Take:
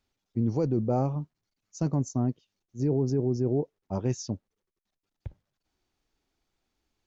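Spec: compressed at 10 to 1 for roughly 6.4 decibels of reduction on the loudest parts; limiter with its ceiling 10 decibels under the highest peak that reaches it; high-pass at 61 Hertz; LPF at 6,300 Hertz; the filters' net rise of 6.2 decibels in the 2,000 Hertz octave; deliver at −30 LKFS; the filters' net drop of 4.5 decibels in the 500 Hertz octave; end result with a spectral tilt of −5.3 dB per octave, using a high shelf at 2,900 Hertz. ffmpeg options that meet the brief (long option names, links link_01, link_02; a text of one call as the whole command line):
ffmpeg -i in.wav -af "highpass=61,lowpass=6300,equalizer=frequency=500:width_type=o:gain=-6.5,equalizer=frequency=2000:width_type=o:gain=5.5,highshelf=frequency=2900:gain=8,acompressor=threshold=-29dB:ratio=10,volume=11dB,alimiter=limit=-19.5dB:level=0:latency=1" out.wav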